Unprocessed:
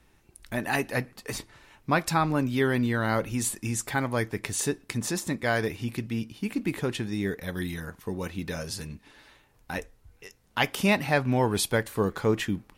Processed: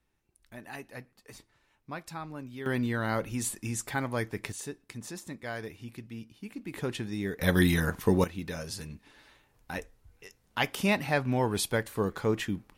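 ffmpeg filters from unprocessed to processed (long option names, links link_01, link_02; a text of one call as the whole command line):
ffmpeg -i in.wav -af "asetnsamples=nb_out_samples=441:pad=0,asendcmd='2.66 volume volume -4dB;4.52 volume volume -11.5dB;6.74 volume volume -4dB;7.4 volume volume 9dB;8.24 volume volume -3.5dB',volume=-15.5dB" out.wav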